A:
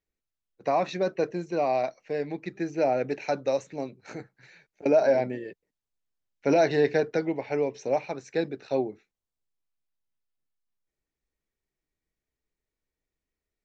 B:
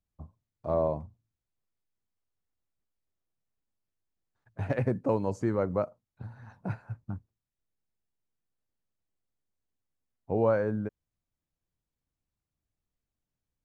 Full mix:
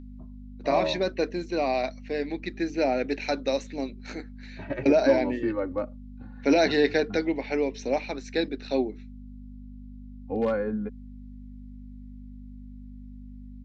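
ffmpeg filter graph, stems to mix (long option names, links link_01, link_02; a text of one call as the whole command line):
ffmpeg -i stem1.wav -i stem2.wav -filter_complex "[0:a]aeval=exprs='val(0)+0.0126*(sin(2*PI*50*n/s)+sin(2*PI*2*50*n/s)/2+sin(2*PI*3*50*n/s)/3+sin(2*PI*4*50*n/s)/4+sin(2*PI*5*50*n/s)/5)':channel_layout=same,volume=-2.5dB[link_01];[1:a]lowpass=2700,volume=16.5dB,asoftclip=hard,volume=-16.5dB,asplit=2[link_02][link_03];[link_03]adelay=2.6,afreqshift=-0.25[link_04];[link_02][link_04]amix=inputs=2:normalize=1,volume=-0.5dB[link_05];[link_01][link_05]amix=inputs=2:normalize=0,equalizer=frequency=125:width_type=o:width=1:gain=-12,equalizer=frequency=250:width_type=o:width=1:gain=10,equalizer=frequency=2000:width_type=o:width=1:gain=5,equalizer=frequency=4000:width_type=o:width=1:gain=11" out.wav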